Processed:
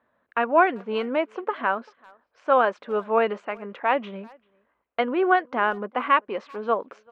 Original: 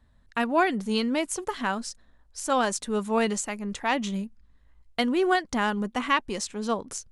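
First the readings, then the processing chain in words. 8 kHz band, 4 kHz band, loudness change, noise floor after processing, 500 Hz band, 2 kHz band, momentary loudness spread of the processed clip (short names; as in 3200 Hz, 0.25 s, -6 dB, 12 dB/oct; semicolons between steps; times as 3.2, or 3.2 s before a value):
under -30 dB, -6.5 dB, +3.0 dB, -74 dBFS, +4.5 dB, +3.0 dB, 12 LU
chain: speaker cabinet 480–2200 Hz, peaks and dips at 530 Hz +3 dB, 840 Hz -4 dB, 1900 Hz -7 dB; speakerphone echo 0.39 s, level -26 dB; gain +7 dB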